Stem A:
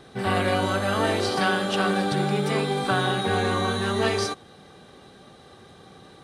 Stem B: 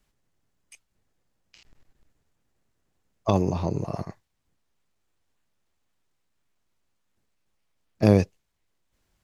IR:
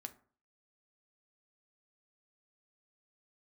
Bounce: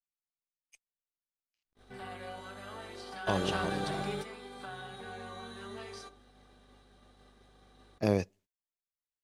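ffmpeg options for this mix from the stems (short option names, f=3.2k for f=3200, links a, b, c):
-filter_complex "[0:a]acompressor=threshold=-32dB:ratio=2.5,aeval=exprs='val(0)+0.00631*(sin(2*PI*50*n/s)+sin(2*PI*2*50*n/s)/2+sin(2*PI*3*50*n/s)/3+sin(2*PI*4*50*n/s)/4+sin(2*PI*5*50*n/s)/5)':c=same,adelay=1750,volume=-3.5dB,asplit=2[a][b];[b]volume=-4.5dB[c];[1:a]volume=-7dB,asplit=3[d][e][f];[e]volume=-18dB[g];[f]apad=whole_len=351943[h];[a][h]sidechaingate=range=-33dB:threshold=-55dB:ratio=16:detection=peak[i];[2:a]atrim=start_sample=2205[j];[c][g]amix=inputs=2:normalize=0[k];[k][j]afir=irnorm=-1:irlink=0[l];[i][d][l]amix=inputs=3:normalize=0,agate=range=-27dB:threshold=-55dB:ratio=16:detection=peak,lowshelf=f=280:g=-7.5"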